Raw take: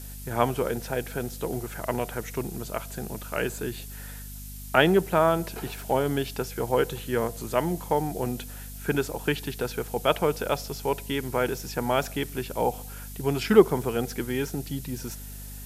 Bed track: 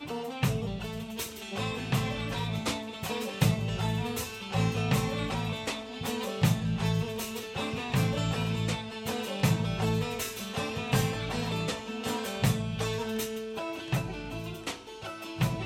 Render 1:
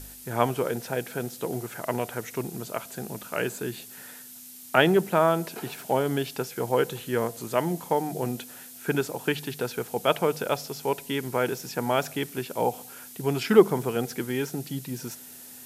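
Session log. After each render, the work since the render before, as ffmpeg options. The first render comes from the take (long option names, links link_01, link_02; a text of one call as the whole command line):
ffmpeg -i in.wav -af "bandreject=frequency=50:width_type=h:width=4,bandreject=frequency=100:width_type=h:width=4,bandreject=frequency=150:width_type=h:width=4,bandreject=frequency=200:width_type=h:width=4" out.wav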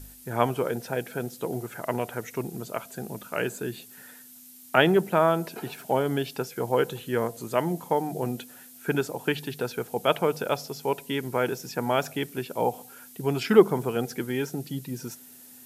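ffmpeg -i in.wav -af "afftdn=noise_reduction=6:noise_floor=-45" out.wav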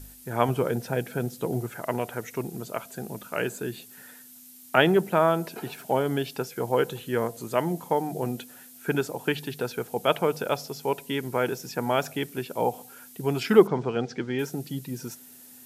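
ffmpeg -i in.wav -filter_complex "[0:a]asettb=1/sr,asplit=3[link_01][link_02][link_03];[link_01]atrim=end=0.484[link_04];[link_02]atrim=start=0.48:end=1.7,asetpts=PTS-STARTPTS,afade=type=in:duration=0.004:curve=qsin,afade=type=out:start_time=1.216:duration=0.004:curve=qsin,equalizer=frequency=110:width=0.51:gain=6[link_05];[link_03]atrim=start=1.696[link_06];[link_04][link_05]acrossfade=duration=0.004:curve1=hsin:curve2=qsin[link_07];[link_07][link_06]acrossfade=duration=0.004:curve1=qsin:curve2=hsin,asettb=1/sr,asplit=3[link_08][link_09][link_10];[link_08]atrim=end=13.674[link_11];[link_09]atrim=start=13.67:end=14.39,asetpts=PTS-STARTPTS,afade=type=in:duration=0.004:curve=qsin,afade=type=out:start_time=0.716:duration=0.004:curve=qsin,lowpass=frequency=5600:width=0.5412,lowpass=frequency=5600:width=1.3066[link_12];[link_10]atrim=start=14.386[link_13];[link_11][link_12]acrossfade=duration=0.004:curve1=hsin:curve2=qsin[link_14];[link_14][link_13]acrossfade=duration=0.004:curve1=qsin:curve2=hsin" out.wav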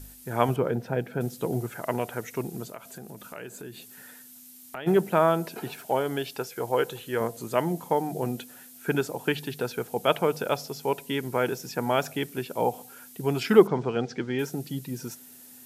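ffmpeg -i in.wav -filter_complex "[0:a]asettb=1/sr,asplit=3[link_01][link_02][link_03];[link_01]atrim=end=0.564[link_04];[link_02]atrim=start=0.56:end=1.21,asetpts=PTS-STARTPTS,afade=type=in:duration=0.004:curve=qsin,afade=type=out:start_time=0.646:duration=0.004:curve=qsin,equalizer=frequency=9900:width=0.36:gain=-14[link_05];[link_03]atrim=start=1.206[link_06];[link_04][link_05]acrossfade=duration=0.004:curve1=hsin:curve2=qsin[link_07];[link_07][link_06]acrossfade=duration=0.004:curve1=qsin:curve2=hsin,asplit=3[link_08][link_09][link_10];[link_08]afade=type=out:start_time=2.67:duration=0.02[link_11];[link_09]acompressor=threshold=-39dB:ratio=3:attack=3.2:release=140:knee=1:detection=peak,afade=type=in:start_time=2.67:duration=0.02,afade=type=out:start_time=4.86:duration=0.02[link_12];[link_10]afade=type=in:start_time=4.86:duration=0.02[link_13];[link_11][link_12][link_13]amix=inputs=3:normalize=0,asettb=1/sr,asplit=3[link_14][link_15][link_16];[link_14]atrim=end=5.804[link_17];[link_15]atrim=start=5.8:end=7.21,asetpts=PTS-STARTPTS,afade=type=in:duration=0.004:curve=qsin,afade=type=out:start_time=1.406:duration=0.004:curve=qsin,equalizer=frequency=180:width_type=o:width=1.4:gain=-7.5[link_18];[link_16]atrim=start=7.206[link_19];[link_17][link_18]acrossfade=duration=0.004:curve1=hsin:curve2=qsin[link_20];[link_20][link_19]acrossfade=duration=0.004:curve1=qsin:curve2=hsin" out.wav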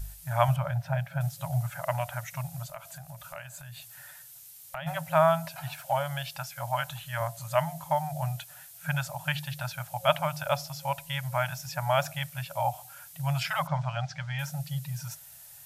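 ffmpeg -i in.wav -af "afftfilt=real='re*(1-between(b*sr/4096,170,540))':imag='im*(1-between(b*sr/4096,170,540))':win_size=4096:overlap=0.75,lowshelf=frequency=97:gain=11.5" out.wav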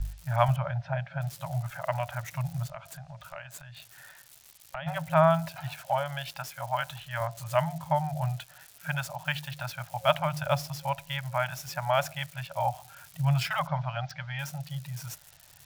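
ffmpeg -i in.wav -filter_complex "[0:a]acrossover=split=270|1400|5300[link_01][link_02][link_03][link_04];[link_01]aphaser=in_gain=1:out_gain=1:delay=4.3:decay=0.5:speed=0.38:type=triangular[link_05];[link_04]acrusher=bits=6:mix=0:aa=0.000001[link_06];[link_05][link_02][link_03][link_06]amix=inputs=4:normalize=0" out.wav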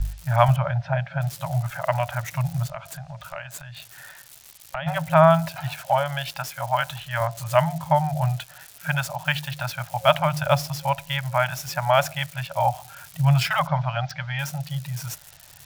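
ffmpeg -i in.wav -af "volume=7dB,alimiter=limit=-3dB:level=0:latency=1" out.wav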